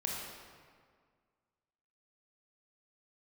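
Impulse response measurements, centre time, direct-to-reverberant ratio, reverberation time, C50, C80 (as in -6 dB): 97 ms, -2.5 dB, 1.9 s, -0.5 dB, 1.5 dB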